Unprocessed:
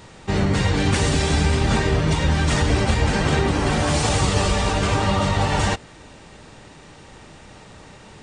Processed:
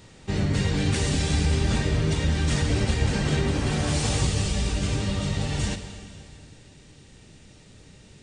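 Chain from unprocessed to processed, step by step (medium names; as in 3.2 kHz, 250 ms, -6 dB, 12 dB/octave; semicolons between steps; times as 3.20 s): peaking EQ 990 Hz -7.5 dB 1.9 oct, from 4.27 s -14.5 dB; plate-style reverb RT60 2.5 s, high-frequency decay 1×, DRR 7.5 dB; trim -4 dB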